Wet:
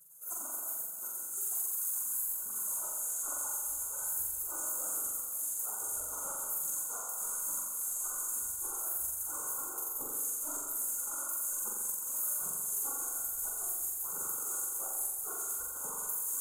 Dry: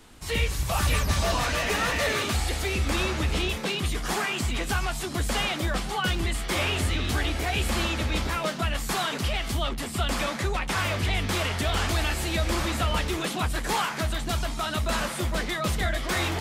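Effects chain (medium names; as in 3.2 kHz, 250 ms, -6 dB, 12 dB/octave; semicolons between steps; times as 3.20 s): 5.37–5.86 s: octave divider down 2 oct, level -2 dB; FFT band-reject 1.5–6.3 kHz; 7.95–8.74 s: hum notches 60/120/180/240 Hz; spectral gate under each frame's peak -30 dB weak; phaser 1.2 Hz, delay 3.8 ms, feedback 55%; compressor with a negative ratio -46 dBFS, ratio -0.5; treble shelf 7.9 kHz +10.5 dB; on a send: flutter echo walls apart 7.5 m, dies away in 1.3 s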